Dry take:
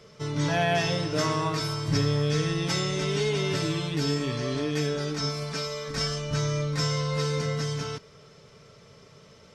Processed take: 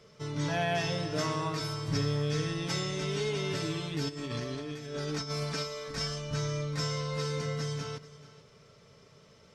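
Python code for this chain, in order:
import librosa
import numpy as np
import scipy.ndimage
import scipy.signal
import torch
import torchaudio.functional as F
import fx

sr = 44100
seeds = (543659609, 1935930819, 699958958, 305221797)

y = fx.over_compress(x, sr, threshold_db=-31.0, ratio=-0.5, at=(4.08, 5.62), fade=0.02)
y = y + 10.0 ** (-17.5 / 20.0) * np.pad(y, (int(437 * sr / 1000.0), 0))[:len(y)]
y = y * librosa.db_to_amplitude(-5.5)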